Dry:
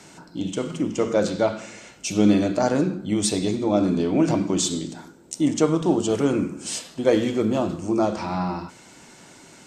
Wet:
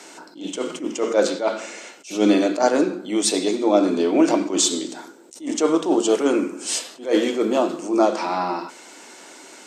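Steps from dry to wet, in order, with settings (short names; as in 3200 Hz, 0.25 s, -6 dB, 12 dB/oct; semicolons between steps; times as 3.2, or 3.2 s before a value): HPF 290 Hz 24 dB/oct; attack slew limiter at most 170 dB/s; gain +5.5 dB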